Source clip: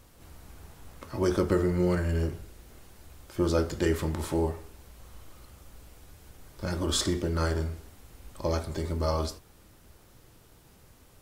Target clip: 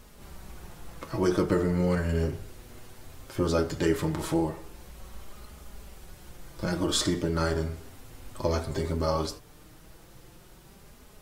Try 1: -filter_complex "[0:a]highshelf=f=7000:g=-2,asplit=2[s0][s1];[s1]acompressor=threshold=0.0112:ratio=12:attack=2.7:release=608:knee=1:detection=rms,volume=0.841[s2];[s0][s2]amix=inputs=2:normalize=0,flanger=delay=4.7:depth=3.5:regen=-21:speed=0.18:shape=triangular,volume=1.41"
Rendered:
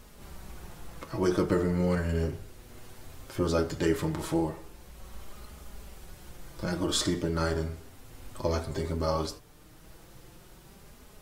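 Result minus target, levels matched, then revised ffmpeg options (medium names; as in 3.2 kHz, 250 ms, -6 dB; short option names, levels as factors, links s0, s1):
compression: peak gain reduction +9.5 dB
-filter_complex "[0:a]highshelf=f=7000:g=-2,asplit=2[s0][s1];[s1]acompressor=threshold=0.0376:ratio=12:attack=2.7:release=608:knee=1:detection=rms,volume=0.841[s2];[s0][s2]amix=inputs=2:normalize=0,flanger=delay=4.7:depth=3.5:regen=-21:speed=0.18:shape=triangular,volume=1.41"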